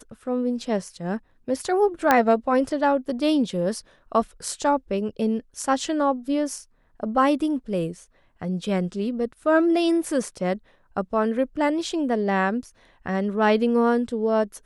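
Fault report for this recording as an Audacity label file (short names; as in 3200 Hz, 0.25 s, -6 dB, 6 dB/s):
2.110000	2.110000	pop -4 dBFS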